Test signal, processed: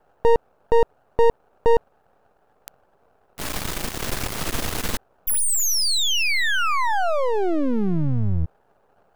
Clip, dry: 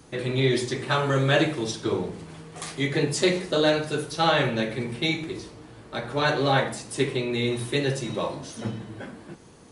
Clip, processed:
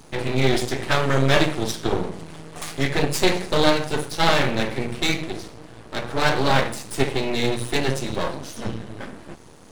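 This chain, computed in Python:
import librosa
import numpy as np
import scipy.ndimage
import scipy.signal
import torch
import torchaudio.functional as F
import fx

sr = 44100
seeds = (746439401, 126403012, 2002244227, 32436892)

y = fx.dmg_noise_band(x, sr, seeds[0], low_hz=390.0, high_hz=870.0, level_db=-65.0)
y = np.maximum(y, 0.0)
y = y * librosa.db_to_amplitude(7.0)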